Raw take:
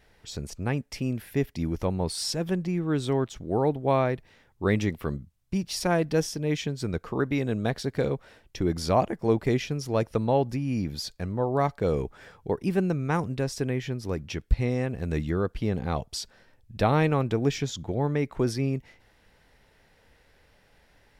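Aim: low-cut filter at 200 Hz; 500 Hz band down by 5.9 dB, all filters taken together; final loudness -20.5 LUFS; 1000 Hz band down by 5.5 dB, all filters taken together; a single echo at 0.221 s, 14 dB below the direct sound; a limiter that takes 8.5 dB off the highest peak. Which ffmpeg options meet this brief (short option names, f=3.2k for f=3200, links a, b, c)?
-af "highpass=200,equalizer=f=500:t=o:g=-6,equalizer=f=1k:t=o:g=-5,alimiter=limit=-22dB:level=0:latency=1,aecho=1:1:221:0.2,volume=14dB"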